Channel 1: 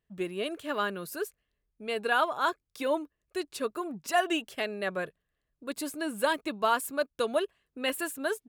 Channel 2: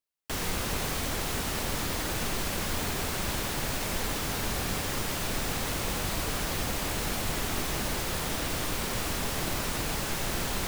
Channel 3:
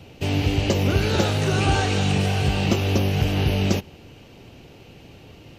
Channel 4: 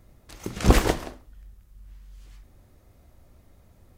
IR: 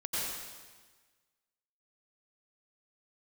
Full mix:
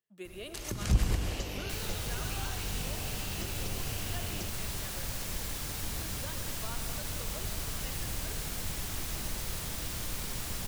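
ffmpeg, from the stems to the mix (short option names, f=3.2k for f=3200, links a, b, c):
-filter_complex "[0:a]highpass=180,volume=-13dB,asplit=2[a][b];[b]volume=-9.5dB[c];[1:a]adelay=1400,volume=-5.5dB,asplit=2[d][e];[e]volume=-9dB[f];[2:a]highpass=f=440:p=1,adelay=700,volume=-8dB[g];[3:a]alimiter=limit=-13.5dB:level=0:latency=1:release=304,adelay=250,volume=-0.5dB,asplit=2[h][i];[i]volume=-7.5dB[j];[4:a]atrim=start_sample=2205[k];[c][f][j]amix=inputs=3:normalize=0[l];[l][k]afir=irnorm=-1:irlink=0[m];[a][d][g][h][m]amix=inputs=5:normalize=0,highshelf=f=3.2k:g=9,acrossover=split=150[n][o];[o]acompressor=threshold=-37dB:ratio=6[p];[n][p]amix=inputs=2:normalize=0"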